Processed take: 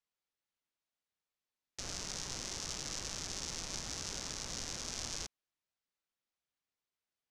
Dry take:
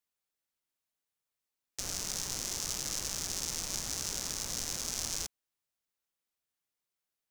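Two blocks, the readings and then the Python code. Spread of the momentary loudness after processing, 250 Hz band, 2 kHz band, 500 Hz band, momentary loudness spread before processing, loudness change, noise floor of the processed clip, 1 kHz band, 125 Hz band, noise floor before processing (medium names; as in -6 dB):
3 LU, -2.0 dB, -2.0 dB, -2.0 dB, 4 LU, -5.5 dB, under -85 dBFS, -2.0 dB, -2.0 dB, under -85 dBFS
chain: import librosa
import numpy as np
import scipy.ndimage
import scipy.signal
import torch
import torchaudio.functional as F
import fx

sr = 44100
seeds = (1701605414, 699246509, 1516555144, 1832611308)

y = scipy.signal.sosfilt(scipy.signal.butter(2, 5700.0, 'lowpass', fs=sr, output='sos'), x)
y = F.gain(torch.from_numpy(y), -2.0).numpy()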